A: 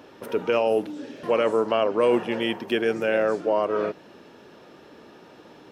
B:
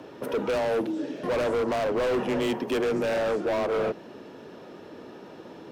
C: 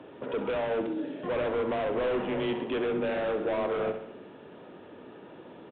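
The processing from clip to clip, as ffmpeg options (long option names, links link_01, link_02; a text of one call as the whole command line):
ffmpeg -i in.wav -af "afreqshift=20,asoftclip=type=hard:threshold=-27.5dB,tiltshelf=frequency=740:gain=3.5,volume=3dB" out.wav
ffmpeg -i in.wav -af "aecho=1:1:66|132|198|264|330|396:0.335|0.184|0.101|0.0557|0.0307|0.0169,aresample=8000,aresample=44100,volume=-4dB" out.wav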